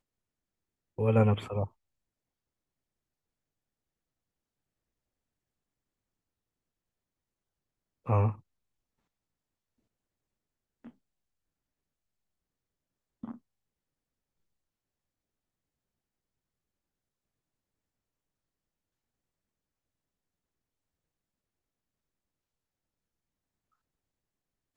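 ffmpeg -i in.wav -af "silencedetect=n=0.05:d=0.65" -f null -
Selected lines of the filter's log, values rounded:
silence_start: 0.00
silence_end: 1.00 | silence_duration: 1.00
silence_start: 1.64
silence_end: 8.09 | silence_duration: 6.45
silence_start: 8.29
silence_end: 24.77 | silence_duration: 16.48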